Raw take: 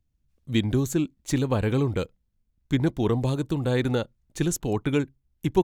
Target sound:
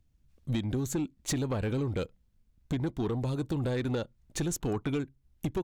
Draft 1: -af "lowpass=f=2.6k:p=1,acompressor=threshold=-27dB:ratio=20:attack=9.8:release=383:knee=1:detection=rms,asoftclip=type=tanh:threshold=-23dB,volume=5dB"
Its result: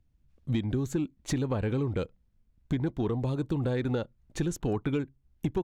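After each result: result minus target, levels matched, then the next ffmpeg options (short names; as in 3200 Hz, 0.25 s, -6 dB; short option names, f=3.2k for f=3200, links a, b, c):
8000 Hz band -7.5 dB; soft clip: distortion -8 dB
-af "lowpass=f=10k:p=1,acompressor=threshold=-27dB:ratio=20:attack=9.8:release=383:knee=1:detection=rms,asoftclip=type=tanh:threshold=-23dB,volume=5dB"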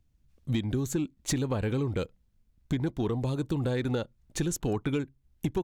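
soft clip: distortion -8 dB
-af "lowpass=f=10k:p=1,acompressor=threshold=-27dB:ratio=20:attack=9.8:release=383:knee=1:detection=rms,asoftclip=type=tanh:threshold=-29dB,volume=5dB"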